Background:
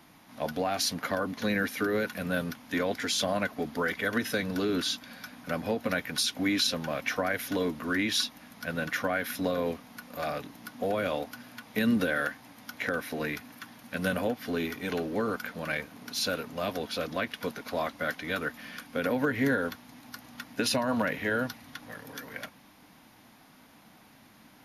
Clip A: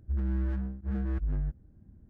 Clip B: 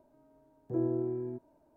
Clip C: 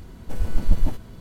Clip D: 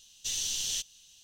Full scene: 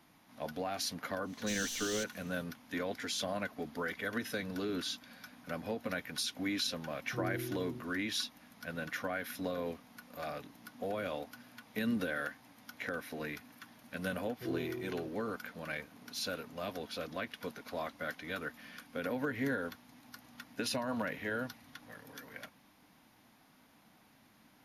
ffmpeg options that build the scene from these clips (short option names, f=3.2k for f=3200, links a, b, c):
-filter_complex "[2:a]asplit=2[a][b];[0:a]volume=-8dB[c];[4:a]asoftclip=type=tanh:threshold=-28dB[d];[a]bandpass=f=150:t=q:w=1.2:csg=0[e];[d]atrim=end=1.23,asetpts=PTS-STARTPTS,volume=-6dB,afade=t=in:d=0.1,afade=t=out:st=1.13:d=0.1,adelay=1220[f];[e]atrim=end=1.76,asetpts=PTS-STARTPTS,volume=-1.5dB,afade=t=in:d=0.004:c=hsin,afade=t=out:st=1.756:d=0.004:c=hsin,adelay=6430[g];[b]atrim=end=1.76,asetpts=PTS-STARTPTS,volume=-8dB,afade=t=in:d=0.004:c=hsin,afade=t=out:st=1.756:d=0.004:c=hsin,adelay=13710[h];[c][f][g][h]amix=inputs=4:normalize=0"